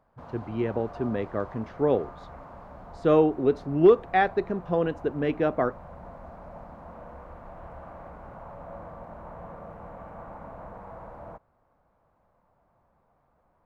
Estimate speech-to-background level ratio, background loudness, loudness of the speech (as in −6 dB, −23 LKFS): 19.0 dB, −44.5 LKFS, −25.5 LKFS